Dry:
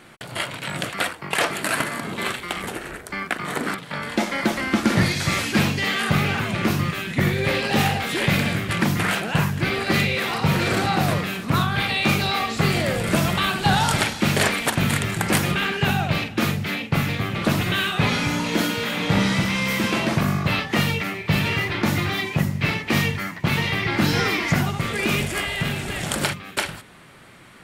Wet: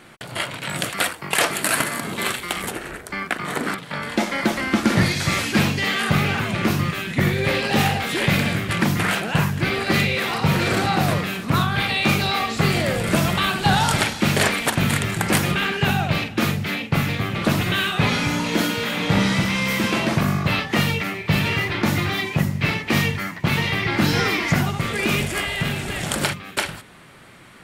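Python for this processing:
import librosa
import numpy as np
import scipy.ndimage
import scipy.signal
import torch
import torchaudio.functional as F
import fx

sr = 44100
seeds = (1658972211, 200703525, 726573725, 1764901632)

y = fx.high_shelf(x, sr, hz=5900.0, db=8.5, at=(0.69, 2.71))
y = y * librosa.db_to_amplitude(1.0)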